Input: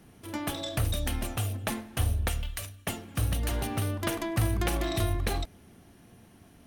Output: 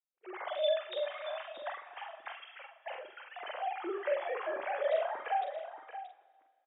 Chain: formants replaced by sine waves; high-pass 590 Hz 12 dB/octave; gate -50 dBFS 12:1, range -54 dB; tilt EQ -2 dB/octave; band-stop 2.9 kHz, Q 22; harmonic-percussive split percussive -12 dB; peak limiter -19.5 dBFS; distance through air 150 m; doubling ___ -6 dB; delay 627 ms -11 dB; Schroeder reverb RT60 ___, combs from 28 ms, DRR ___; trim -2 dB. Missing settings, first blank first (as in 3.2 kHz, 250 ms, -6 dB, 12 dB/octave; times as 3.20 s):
45 ms, 1.9 s, 14.5 dB